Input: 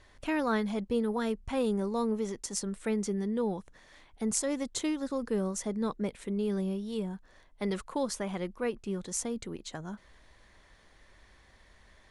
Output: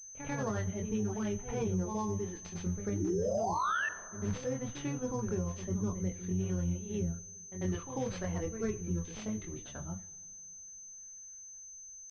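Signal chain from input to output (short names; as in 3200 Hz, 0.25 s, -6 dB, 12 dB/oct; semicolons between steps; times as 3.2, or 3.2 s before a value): octaver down 1 oct, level -4 dB; reverb removal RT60 0.89 s; painted sound rise, 3.01–3.86, 310–2000 Hz -24 dBFS; pitch shift -1.5 st; gate -50 dBFS, range -14 dB; chorus voices 6, 0.47 Hz, delay 23 ms, depth 1.1 ms; rotary speaker horn 6 Hz, later 0.65 Hz, at 1.64; reverse echo 94 ms -10.5 dB; two-slope reverb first 0.48 s, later 3.3 s, from -19 dB, DRR 11.5 dB; limiter -27 dBFS, peak gain reduction 12.5 dB; pulse-width modulation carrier 6200 Hz; gain +2 dB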